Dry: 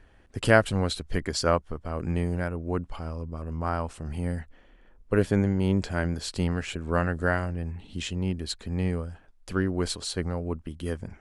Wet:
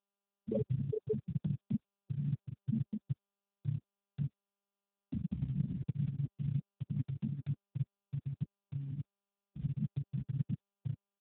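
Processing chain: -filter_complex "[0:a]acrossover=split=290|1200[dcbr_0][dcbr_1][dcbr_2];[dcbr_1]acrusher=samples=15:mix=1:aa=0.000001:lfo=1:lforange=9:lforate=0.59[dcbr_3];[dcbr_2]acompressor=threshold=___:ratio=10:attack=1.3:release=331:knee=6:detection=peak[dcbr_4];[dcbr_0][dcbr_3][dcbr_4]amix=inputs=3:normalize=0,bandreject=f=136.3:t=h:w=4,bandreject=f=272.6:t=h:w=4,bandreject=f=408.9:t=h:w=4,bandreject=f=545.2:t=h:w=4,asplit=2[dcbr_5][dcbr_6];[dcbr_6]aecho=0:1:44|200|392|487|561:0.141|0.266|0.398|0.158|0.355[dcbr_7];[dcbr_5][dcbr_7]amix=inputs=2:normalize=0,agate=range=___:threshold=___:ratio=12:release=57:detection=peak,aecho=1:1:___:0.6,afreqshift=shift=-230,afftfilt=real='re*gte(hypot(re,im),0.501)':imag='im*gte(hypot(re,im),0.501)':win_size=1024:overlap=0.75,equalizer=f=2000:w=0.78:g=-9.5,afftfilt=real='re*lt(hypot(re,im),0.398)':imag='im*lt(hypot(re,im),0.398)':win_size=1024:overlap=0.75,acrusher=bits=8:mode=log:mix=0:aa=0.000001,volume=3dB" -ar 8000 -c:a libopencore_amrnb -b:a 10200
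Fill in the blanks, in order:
-49dB, -54dB, -42dB, 2.7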